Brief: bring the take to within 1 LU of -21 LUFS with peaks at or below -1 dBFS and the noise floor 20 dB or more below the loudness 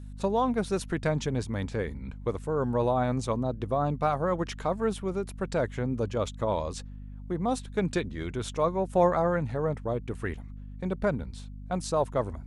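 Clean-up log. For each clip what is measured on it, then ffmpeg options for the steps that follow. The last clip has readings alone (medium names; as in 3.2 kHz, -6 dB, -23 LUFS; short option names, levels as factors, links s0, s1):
hum 50 Hz; highest harmonic 250 Hz; hum level -39 dBFS; loudness -29.5 LUFS; peak level -11.5 dBFS; loudness target -21.0 LUFS
-> -af "bandreject=f=50:t=h:w=4,bandreject=f=100:t=h:w=4,bandreject=f=150:t=h:w=4,bandreject=f=200:t=h:w=4,bandreject=f=250:t=h:w=4"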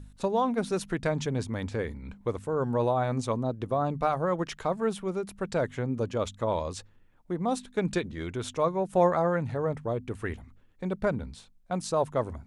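hum not found; loudness -30.0 LUFS; peak level -11.5 dBFS; loudness target -21.0 LUFS
-> -af "volume=2.82"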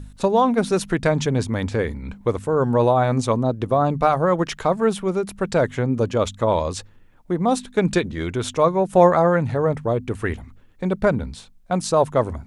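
loudness -21.0 LUFS; peak level -2.5 dBFS; noise floor -49 dBFS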